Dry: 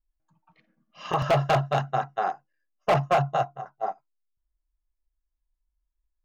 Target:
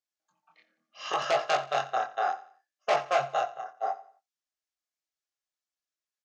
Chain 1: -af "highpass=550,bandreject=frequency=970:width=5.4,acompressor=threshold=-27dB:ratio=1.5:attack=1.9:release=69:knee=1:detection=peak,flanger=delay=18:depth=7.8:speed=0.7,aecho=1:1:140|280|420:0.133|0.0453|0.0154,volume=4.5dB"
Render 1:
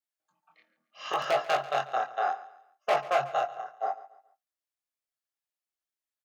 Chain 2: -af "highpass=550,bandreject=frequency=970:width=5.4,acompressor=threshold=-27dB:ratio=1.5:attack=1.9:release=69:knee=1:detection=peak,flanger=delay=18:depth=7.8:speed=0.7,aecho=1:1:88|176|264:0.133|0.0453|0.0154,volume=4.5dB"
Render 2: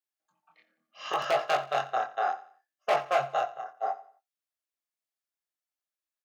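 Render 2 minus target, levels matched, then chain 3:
8,000 Hz band −4.0 dB
-af "highpass=550,bandreject=frequency=970:width=5.4,acompressor=threshold=-27dB:ratio=1.5:attack=1.9:release=69:knee=1:detection=peak,lowpass=frequency=6400:width_type=q:width=1.7,flanger=delay=18:depth=7.8:speed=0.7,aecho=1:1:88|176|264:0.133|0.0453|0.0154,volume=4.5dB"

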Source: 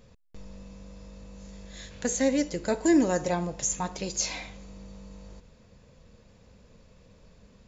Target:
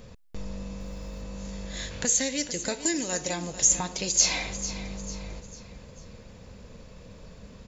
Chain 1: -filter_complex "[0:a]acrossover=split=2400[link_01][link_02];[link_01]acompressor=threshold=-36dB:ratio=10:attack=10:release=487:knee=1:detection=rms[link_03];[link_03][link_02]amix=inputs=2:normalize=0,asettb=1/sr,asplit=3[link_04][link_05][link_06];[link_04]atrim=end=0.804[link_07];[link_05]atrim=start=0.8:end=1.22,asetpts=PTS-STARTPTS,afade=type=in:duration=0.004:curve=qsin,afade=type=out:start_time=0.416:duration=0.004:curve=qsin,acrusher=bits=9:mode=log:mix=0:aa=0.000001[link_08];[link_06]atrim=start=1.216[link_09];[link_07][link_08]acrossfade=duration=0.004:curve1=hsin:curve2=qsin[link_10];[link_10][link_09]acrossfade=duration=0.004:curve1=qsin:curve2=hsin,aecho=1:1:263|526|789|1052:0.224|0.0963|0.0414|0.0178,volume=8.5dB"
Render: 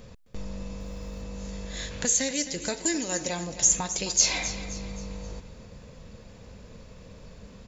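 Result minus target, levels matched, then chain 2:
echo 184 ms early
-filter_complex "[0:a]acrossover=split=2400[link_01][link_02];[link_01]acompressor=threshold=-36dB:ratio=10:attack=10:release=487:knee=1:detection=rms[link_03];[link_03][link_02]amix=inputs=2:normalize=0,asettb=1/sr,asplit=3[link_04][link_05][link_06];[link_04]atrim=end=0.804[link_07];[link_05]atrim=start=0.8:end=1.22,asetpts=PTS-STARTPTS,afade=type=in:duration=0.004:curve=qsin,afade=type=out:start_time=0.416:duration=0.004:curve=qsin,acrusher=bits=9:mode=log:mix=0:aa=0.000001[link_08];[link_06]atrim=start=1.216[link_09];[link_07][link_08]acrossfade=duration=0.004:curve1=hsin:curve2=qsin[link_10];[link_10][link_09]acrossfade=duration=0.004:curve1=qsin:curve2=hsin,aecho=1:1:447|894|1341|1788:0.224|0.0963|0.0414|0.0178,volume=8.5dB"

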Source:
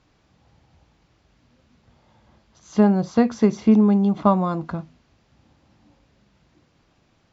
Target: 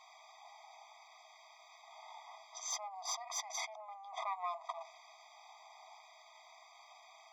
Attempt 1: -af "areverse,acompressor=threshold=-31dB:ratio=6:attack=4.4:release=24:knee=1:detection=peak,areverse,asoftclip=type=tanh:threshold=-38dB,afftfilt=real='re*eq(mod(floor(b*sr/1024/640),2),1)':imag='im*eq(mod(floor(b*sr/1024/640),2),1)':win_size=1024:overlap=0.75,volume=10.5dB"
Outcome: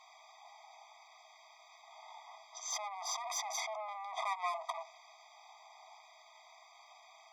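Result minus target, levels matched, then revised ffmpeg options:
downward compressor: peak gain reduction −9 dB
-af "areverse,acompressor=threshold=-42dB:ratio=6:attack=4.4:release=24:knee=1:detection=peak,areverse,asoftclip=type=tanh:threshold=-38dB,afftfilt=real='re*eq(mod(floor(b*sr/1024/640),2),1)':imag='im*eq(mod(floor(b*sr/1024/640),2),1)':win_size=1024:overlap=0.75,volume=10.5dB"

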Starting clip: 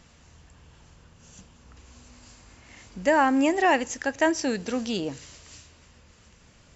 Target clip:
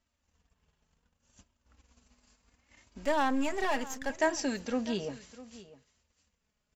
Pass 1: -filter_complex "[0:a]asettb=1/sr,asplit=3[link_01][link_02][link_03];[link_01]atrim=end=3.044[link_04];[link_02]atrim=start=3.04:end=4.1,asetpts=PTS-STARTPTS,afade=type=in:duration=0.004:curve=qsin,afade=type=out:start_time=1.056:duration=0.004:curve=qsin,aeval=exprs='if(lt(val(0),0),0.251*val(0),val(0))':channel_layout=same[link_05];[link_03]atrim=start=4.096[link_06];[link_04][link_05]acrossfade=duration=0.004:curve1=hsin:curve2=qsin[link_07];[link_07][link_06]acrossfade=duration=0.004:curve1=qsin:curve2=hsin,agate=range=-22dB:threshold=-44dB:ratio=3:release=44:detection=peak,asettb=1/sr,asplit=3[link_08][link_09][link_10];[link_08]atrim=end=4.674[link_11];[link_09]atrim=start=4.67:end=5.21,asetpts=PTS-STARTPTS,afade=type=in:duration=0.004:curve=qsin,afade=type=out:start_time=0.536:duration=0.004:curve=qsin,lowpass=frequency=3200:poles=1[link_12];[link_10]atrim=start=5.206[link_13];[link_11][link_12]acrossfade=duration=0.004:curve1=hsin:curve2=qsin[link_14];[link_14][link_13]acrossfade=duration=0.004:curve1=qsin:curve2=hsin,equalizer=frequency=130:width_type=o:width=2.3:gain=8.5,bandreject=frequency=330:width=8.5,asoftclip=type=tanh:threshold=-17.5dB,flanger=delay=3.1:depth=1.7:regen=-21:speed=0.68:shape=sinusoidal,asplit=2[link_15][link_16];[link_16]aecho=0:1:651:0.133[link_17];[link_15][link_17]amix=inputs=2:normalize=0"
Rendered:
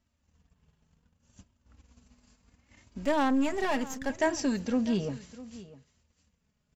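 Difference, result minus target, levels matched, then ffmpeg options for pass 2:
125 Hz band +6.0 dB
-filter_complex "[0:a]asettb=1/sr,asplit=3[link_01][link_02][link_03];[link_01]atrim=end=3.044[link_04];[link_02]atrim=start=3.04:end=4.1,asetpts=PTS-STARTPTS,afade=type=in:duration=0.004:curve=qsin,afade=type=out:start_time=1.056:duration=0.004:curve=qsin,aeval=exprs='if(lt(val(0),0),0.251*val(0),val(0))':channel_layout=same[link_05];[link_03]atrim=start=4.096[link_06];[link_04][link_05]acrossfade=duration=0.004:curve1=hsin:curve2=qsin[link_07];[link_07][link_06]acrossfade=duration=0.004:curve1=qsin:curve2=hsin,agate=range=-22dB:threshold=-44dB:ratio=3:release=44:detection=peak,asettb=1/sr,asplit=3[link_08][link_09][link_10];[link_08]atrim=end=4.674[link_11];[link_09]atrim=start=4.67:end=5.21,asetpts=PTS-STARTPTS,afade=type=in:duration=0.004:curve=qsin,afade=type=out:start_time=0.536:duration=0.004:curve=qsin,lowpass=frequency=3200:poles=1[link_12];[link_10]atrim=start=5.206[link_13];[link_11][link_12]acrossfade=duration=0.004:curve1=hsin:curve2=qsin[link_14];[link_14][link_13]acrossfade=duration=0.004:curve1=qsin:curve2=hsin,equalizer=frequency=130:width_type=o:width=2.3:gain=-2,bandreject=frequency=330:width=8.5,asoftclip=type=tanh:threshold=-17.5dB,flanger=delay=3.1:depth=1.7:regen=-21:speed=0.68:shape=sinusoidal,asplit=2[link_15][link_16];[link_16]aecho=0:1:651:0.133[link_17];[link_15][link_17]amix=inputs=2:normalize=0"

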